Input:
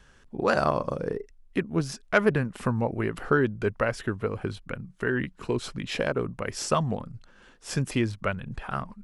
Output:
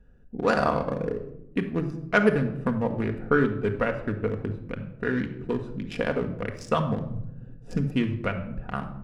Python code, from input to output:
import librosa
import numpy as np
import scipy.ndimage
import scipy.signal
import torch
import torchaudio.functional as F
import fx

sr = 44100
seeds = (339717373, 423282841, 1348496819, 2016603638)

y = fx.wiener(x, sr, points=41)
y = fx.low_shelf(y, sr, hz=490.0, db=10.5, at=(7.1, 7.77))
y = fx.room_shoebox(y, sr, seeds[0], volume_m3=2300.0, walls='furnished', distance_m=1.8)